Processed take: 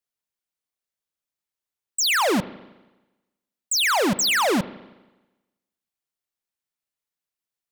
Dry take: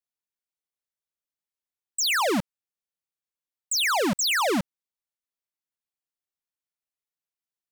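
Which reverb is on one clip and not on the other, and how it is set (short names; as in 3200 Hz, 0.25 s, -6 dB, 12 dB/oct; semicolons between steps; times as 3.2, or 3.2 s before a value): spring tank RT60 1.1 s, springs 32/40 ms, chirp 20 ms, DRR 15.5 dB; gain +3 dB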